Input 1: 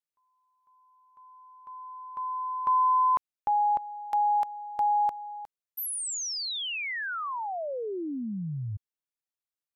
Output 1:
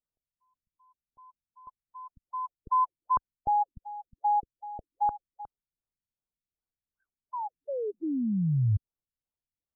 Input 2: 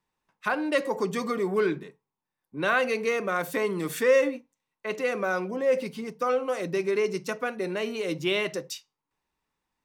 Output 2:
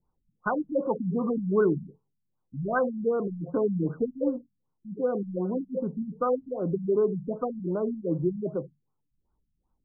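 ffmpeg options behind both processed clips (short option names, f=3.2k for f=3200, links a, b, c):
-af "aemphasis=mode=reproduction:type=bsi,afftfilt=real='re*lt(b*sr/1024,230*pow(1600/230,0.5+0.5*sin(2*PI*2.6*pts/sr)))':imag='im*lt(b*sr/1024,230*pow(1600/230,0.5+0.5*sin(2*PI*2.6*pts/sr)))':win_size=1024:overlap=0.75"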